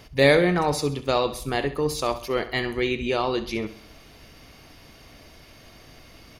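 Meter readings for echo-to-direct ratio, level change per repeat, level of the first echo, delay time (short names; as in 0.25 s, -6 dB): -13.0 dB, -6.5 dB, -14.0 dB, 66 ms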